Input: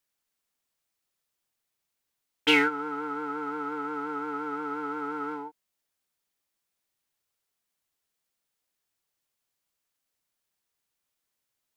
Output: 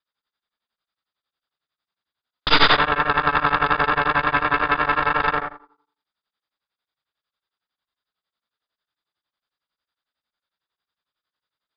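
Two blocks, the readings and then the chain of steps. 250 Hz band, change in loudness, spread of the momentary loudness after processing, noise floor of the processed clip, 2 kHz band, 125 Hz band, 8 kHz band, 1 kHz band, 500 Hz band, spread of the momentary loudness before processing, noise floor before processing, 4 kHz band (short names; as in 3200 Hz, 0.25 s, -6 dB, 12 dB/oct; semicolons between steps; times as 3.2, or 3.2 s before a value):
+1.0 dB, +10.5 dB, 7 LU, under -85 dBFS, +11.5 dB, +20.0 dB, n/a, +13.5 dB, +6.5 dB, 12 LU, -83 dBFS, +10.0 dB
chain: on a send: flutter echo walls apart 7 m, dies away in 0.61 s; on the sum: added harmonics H 4 -10 dB, 7 -18 dB, 8 -24 dB, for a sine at -7 dBFS; sine folder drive 17 dB, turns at -5.5 dBFS; rippled Chebyshev low-pass 5000 Hz, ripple 9 dB; de-hum 390.3 Hz, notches 38; beating tremolo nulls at 11 Hz; gain +4.5 dB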